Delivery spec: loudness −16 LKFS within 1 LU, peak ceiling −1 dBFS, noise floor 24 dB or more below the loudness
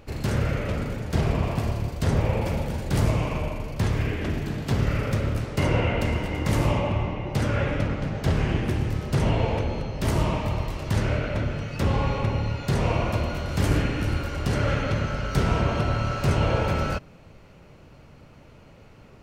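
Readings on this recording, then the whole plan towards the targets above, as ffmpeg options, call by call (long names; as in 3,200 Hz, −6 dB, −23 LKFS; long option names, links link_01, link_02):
integrated loudness −26.0 LKFS; sample peak −9.0 dBFS; target loudness −16.0 LKFS
→ -af "volume=10dB,alimiter=limit=-1dB:level=0:latency=1"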